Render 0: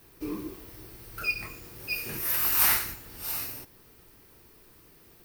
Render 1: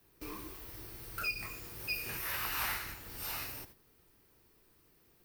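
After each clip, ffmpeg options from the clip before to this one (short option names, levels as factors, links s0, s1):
-filter_complex "[0:a]agate=range=0.282:threshold=0.00282:ratio=16:detection=peak,acrossover=split=110|610|4400[s0][s1][s2][s3];[s0]acompressor=threshold=0.00355:ratio=4[s4];[s1]acompressor=threshold=0.002:ratio=4[s5];[s2]acompressor=threshold=0.0158:ratio=4[s6];[s3]acompressor=threshold=0.00891:ratio=4[s7];[s4][s5][s6][s7]amix=inputs=4:normalize=0"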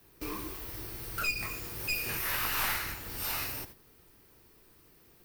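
-af "aeval=exprs='clip(val(0),-1,0.0119)':c=same,volume=2.11"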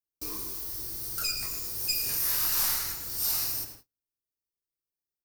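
-filter_complex "[0:a]highshelf=f=3800:t=q:w=1.5:g=12,asplit=2[s0][s1];[s1]adelay=109,lowpass=f=4100:p=1,volume=0.398,asplit=2[s2][s3];[s3]adelay=109,lowpass=f=4100:p=1,volume=0.45,asplit=2[s4][s5];[s5]adelay=109,lowpass=f=4100:p=1,volume=0.45,asplit=2[s6][s7];[s7]adelay=109,lowpass=f=4100:p=1,volume=0.45,asplit=2[s8][s9];[s9]adelay=109,lowpass=f=4100:p=1,volume=0.45[s10];[s0][s2][s4][s6][s8][s10]amix=inputs=6:normalize=0,agate=range=0.0126:threshold=0.00708:ratio=16:detection=peak,volume=0.562"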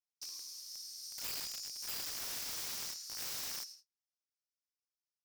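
-af "bandpass=f=5400:t=q:w=3.5:csg=0,alimiter=level_in=2.51:limit=0.0631:level=0:latency=1:release=26,volume=0.398,aeval=exprs='(mod(70.8*val(0)+1,2)-1)/70.8':c=same,volume=1.19"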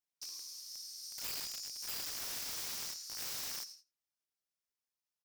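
-af "aecho=1:1:88:0.0668"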